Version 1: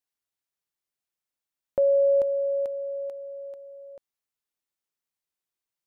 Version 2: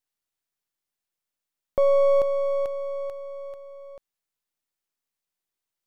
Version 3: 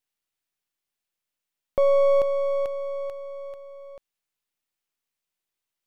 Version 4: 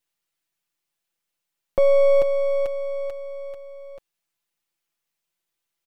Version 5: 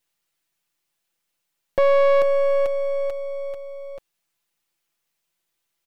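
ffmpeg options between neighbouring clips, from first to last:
-af "aeval=exprs='if(lt(val(0),0),0.447*val(0),val(0))':c=same,volume=1.58"
-af "equalizer=f=2700:w=1.5:g=3.5"
-af "aecho=1:1:5.9:0.68,volume=1.26"
-af "asoftclip=type=tanh:threshold=0.133,volume=1.68"

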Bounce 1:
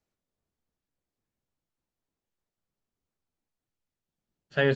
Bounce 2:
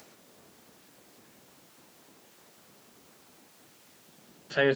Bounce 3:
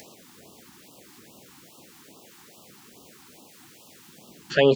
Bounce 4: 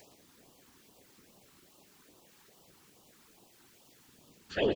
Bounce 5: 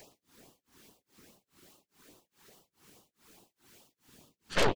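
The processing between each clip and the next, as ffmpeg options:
-af "highpass=200,acompressor=mode=upward:threshold=0.0282:ratio=2.5"
-af "afftfilt=real='re*(1-between(b*sr/1024,510*pow(1900/510,0.5+0.5*sin(2*PI*2.4*pts/sr))/1.41,510*pow(1900/510,0.5+0.5*sin(2*PI*2.4*pts/sr))*1.41))':imag='im*(1-between(b*sr/1024,510*pow(1900/510,0.5+0.5*sin(2*PI*2.4*pts/sr))/1.41,510*pow(1900/510,0.5+0.5*sin(2*PI*2.4*pts/sr))*1.41))':win_size=1024:overlap=0.75,volume=2.37"
-filter_complex "[0:a]afftfilt=real='hypot(re,im)*cos(2*PI*random(0))':imag='hypot(re,im)*sin(2*PI*random(1))':win_size=512:overlap=0.75,asplit=2[s0][s1];[s1]aecho=0:1:116:0.282[s2];[s0][s2]amix=inputs=2:normalize=0,volume=0.562"
-af "tremolo=f=2.4:d=0.99,aeval=exprs='0.126*(cos(1*acos(clip(val(0)/0.126,-1,1)))-cos(1*PI/2))+0.0178*(cos(3*acos(clip(val(0)/0.126,-1,1)))-cos(3*PI/2))+0.0224*(cos(5*acos(clip(val(0)/0.126,-1,1)))-cos(5*PI/2))+0.0501*(cos(8*acos(clip(val(0)/0.126,-1,1)))-cos(8*PI/2))':c=same"

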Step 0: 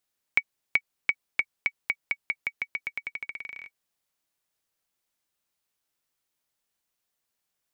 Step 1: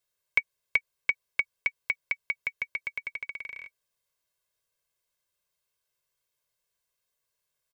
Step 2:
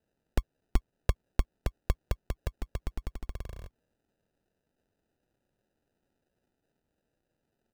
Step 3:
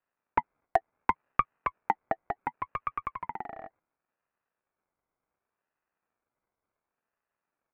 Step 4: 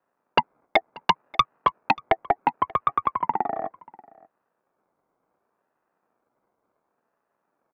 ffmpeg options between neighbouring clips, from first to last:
-af "equalizer=f=170:t=o:w=0.63:g=2,aecho=1:1:1.9:0.85,volume=0.708"
-af "acrusher=samples=40:mix=1:aa=0.000001,volume=1.19"
-af "lowpass=f=1200:t=q:w=4,agate=range=0.398:threshold=0.00141:ratio=16:detection=peak,aeval=exprs='val(0)*sin(2*PI*950*n/s+950*0.25/0.69*sin(2*PI*0.69*n/s))':c=same,volume=1.26"
-filter_complex "[0:a]acrossover=split=140|1300[s0][s1][s2];[s1]aeval=exprs='0.316*sin(PI/2*3.55*val(0)/0.316)':c=same[s3];[s0][s3][s2]amix=inputs=3:normalize=0,aecho=1:1:585:0.0708"

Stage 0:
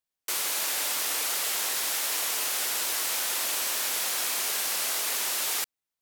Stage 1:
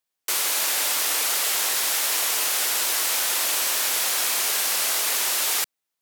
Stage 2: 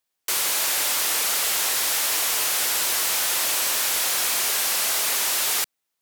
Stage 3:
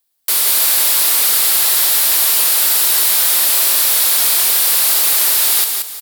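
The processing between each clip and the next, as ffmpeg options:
-af "lowshelf=f=160:g=-8.5,volume=1.88"
-af "asoftclip=type=tanh:threshold=0.0944,volume=1.41"
-filter_complex "[0:a]asplit=2[s0][s1];[s1]aecho=0:1:179|358|537|716:0.531|0.165|0.051|0.0158[s2];[s0][s2]amix=inputs=2:normalize=0,aexciter=amount=1.3:drive=8:freq=3600,volume=1.33"

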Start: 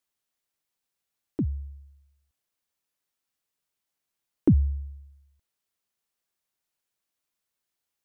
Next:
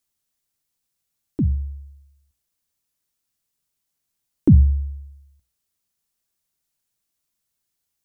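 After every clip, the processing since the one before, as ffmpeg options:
-af "bass=f=250:g=10,treble=f=4000:g=7,bandreject=f=60:t=h:w=6,bandreject=f=120:t=h:w=6,bandreject=f=180:t=h:w=6"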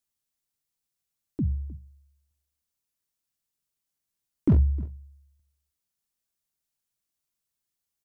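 -af "aeval=exprs='0.447*(abs(mod(val(0)/0.447+3,4)-2)-1)':c=same,aecho=1:1:309:0.1,volume=0.473"

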